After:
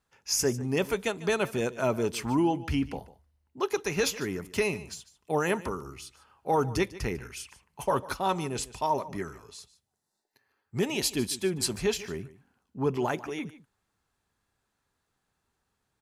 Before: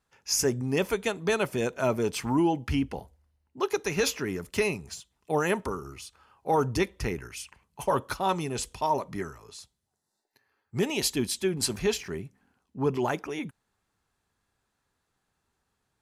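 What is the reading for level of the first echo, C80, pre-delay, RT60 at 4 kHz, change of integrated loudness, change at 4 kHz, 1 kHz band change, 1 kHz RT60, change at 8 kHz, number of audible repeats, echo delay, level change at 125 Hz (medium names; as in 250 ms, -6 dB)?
-17.5 dB, no reverb, no reverb, no reverb, -1.0 dB, -1.0 dB, -1.0 dB, no reverb, -1.0 dB, 1, 148 ms, -1.0 dB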